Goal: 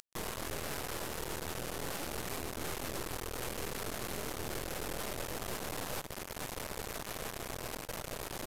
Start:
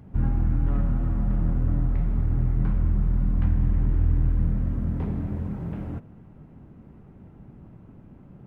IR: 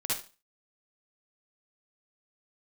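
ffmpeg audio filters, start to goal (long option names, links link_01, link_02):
-filter_complex "[0:a]highpass=330,alimiter=level_in=11dB:limit=-24dB:level=0:latency=1:release=453,volume=-11dB,areverse,acompressor=threshold=-53dB:ratio=16,areverse,aeval=exprs='abs(val(0))':channel_layout=same,acrusher=bits=8:mix=0:aa=0.000001,crystalizer=i=1.5:c=0,asplit=2[link_01][link_02];[link_02]aecho=0:1:127:0.112[link_03];[link_01][link_03]amix=inputs=2:normalize=0,aresample=32000,aresample=44100,volume=15dB"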